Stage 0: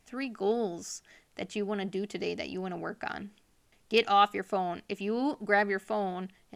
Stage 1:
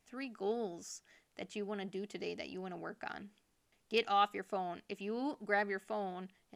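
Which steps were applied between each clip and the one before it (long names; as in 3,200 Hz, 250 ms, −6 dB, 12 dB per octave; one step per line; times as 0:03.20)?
low-shelf EQ 120 Hz −5 dB
level −7.5 dB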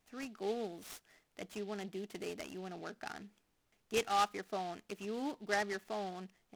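short delay modulated by noise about 3,100 Hz, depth 0.037 ms
level −1 dB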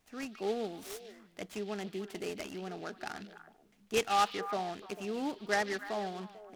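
echo through a band-pass that steps 148 ms, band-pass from 3,300 Hz, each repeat −1.4 octaves, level −7 dB
level +3.5 dB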